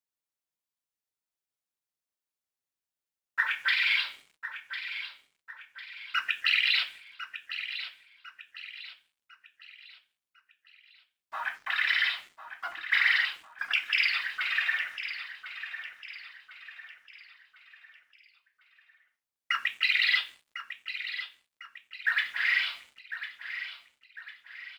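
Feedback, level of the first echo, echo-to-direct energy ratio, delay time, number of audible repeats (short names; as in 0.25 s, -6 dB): 42%, -11.0 dB, -10.0 dB, 1.051 s, 4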